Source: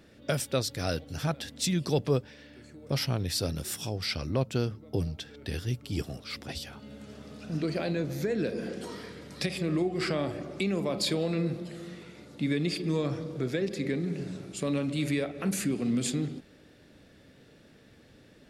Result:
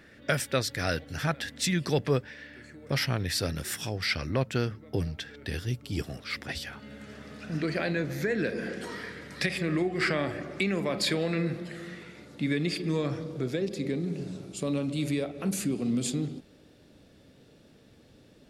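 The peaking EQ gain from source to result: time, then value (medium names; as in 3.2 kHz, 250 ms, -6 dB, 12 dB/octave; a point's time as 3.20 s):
peaking EQ 1.8 kHz 0.84 oct
5.18 s +11 dB
5.85 s 0 dB
6.19 s +10.5 dB
11.83 s +10.5 dB
12.25 s +4 dB
13.09 s +4 dB
13.69 s -6 dB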